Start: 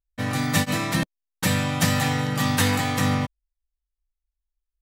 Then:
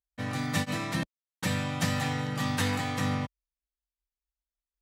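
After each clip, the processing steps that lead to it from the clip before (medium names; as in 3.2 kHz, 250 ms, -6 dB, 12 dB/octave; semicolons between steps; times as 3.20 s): high-pass 44 Hz; treble shelf 11 kHz -11 dB; trim -7 dB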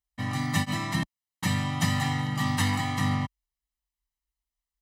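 comb 1 ms, depth 72%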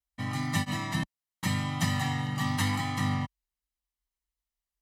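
vibrato 0.8 Hz 32 cents; trim -2.5 dB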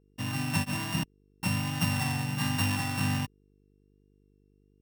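sorted samples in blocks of 16 samples; vibrato 1.3 Hz 22 cents; mains buzz 50 Hz, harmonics 9, -65 dBFS -3 dB/octave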